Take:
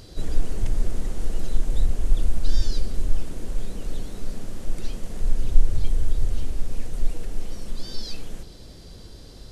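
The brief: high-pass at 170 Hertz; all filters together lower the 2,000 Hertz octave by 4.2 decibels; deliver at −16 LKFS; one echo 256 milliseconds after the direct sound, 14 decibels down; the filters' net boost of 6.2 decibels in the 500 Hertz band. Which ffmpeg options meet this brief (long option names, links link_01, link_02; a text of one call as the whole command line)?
ffmpeg -i in.wav -af "highpass=170,equalizer=frequency=500:width_type=o:gain=8,equalizer=frequency=2000:width_type=o:gain=-6,aecho=1:1:256:0.2,volume=22.5dB" out.wav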